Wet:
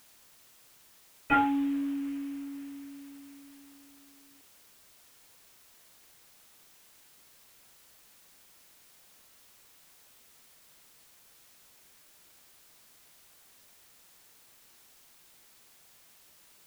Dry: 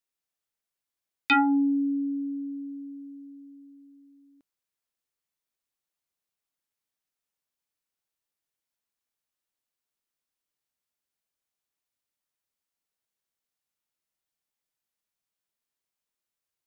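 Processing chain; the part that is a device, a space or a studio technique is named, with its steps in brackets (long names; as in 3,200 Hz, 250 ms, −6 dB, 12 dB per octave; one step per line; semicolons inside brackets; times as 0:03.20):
0:01.31–0:02.00: high-pass filter 170 Hz → 68 Hz 12 dB per octave
army field radio (band-pass filter 340–3,000 Hz; variable-slope delta modulation 16 kbit/s; white noise bed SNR 19 dB)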